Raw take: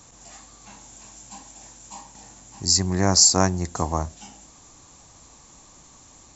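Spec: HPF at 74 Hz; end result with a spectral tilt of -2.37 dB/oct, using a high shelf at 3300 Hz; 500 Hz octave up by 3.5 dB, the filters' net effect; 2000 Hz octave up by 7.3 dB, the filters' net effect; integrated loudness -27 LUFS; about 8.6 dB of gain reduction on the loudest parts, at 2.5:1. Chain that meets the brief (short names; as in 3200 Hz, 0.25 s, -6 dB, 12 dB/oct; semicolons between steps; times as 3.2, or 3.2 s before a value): HPF 74 Hz; bell 500 Hz +4 dB; bell 2000 Hz +8 dB; high shelf 3300 Hz +4.5 dB; compressor 2.5:1, threshold -20 dBFS; gain -3 dB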